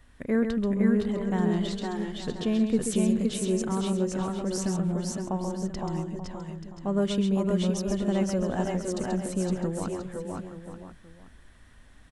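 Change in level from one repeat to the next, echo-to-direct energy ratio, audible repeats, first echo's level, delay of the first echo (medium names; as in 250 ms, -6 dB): no regular repeats, 0.0 dB, 6, -6.5 dB, 133 ms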